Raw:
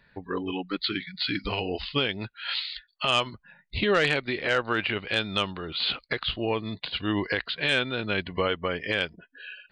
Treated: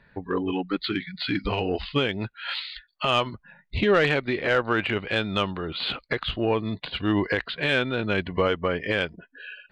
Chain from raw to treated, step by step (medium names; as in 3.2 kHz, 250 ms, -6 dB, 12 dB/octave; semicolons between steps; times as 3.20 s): low-pass 1.8 kHz 6 dB/octave; in parallel at -7.5 dB: saturation -23.5 dBFS, distortion -13 dB; on the sum: trim +2 dB